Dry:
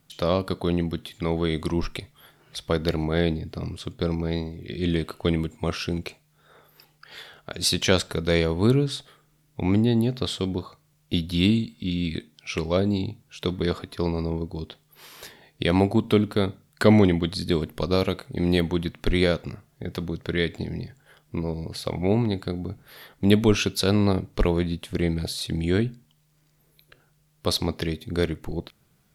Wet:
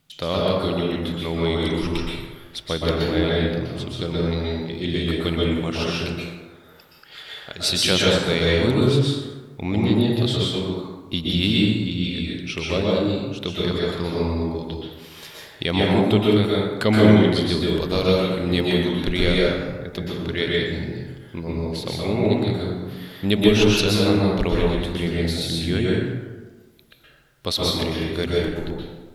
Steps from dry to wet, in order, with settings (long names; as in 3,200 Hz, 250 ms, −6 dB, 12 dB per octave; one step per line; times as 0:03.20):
parametric band 3,200 Hz +6.5 dB 1.2 octaves
dense smooth reverb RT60 1.3 s, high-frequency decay 0.5×, pre-delay 110 ms, DRR −4.5 dB
level −3 dB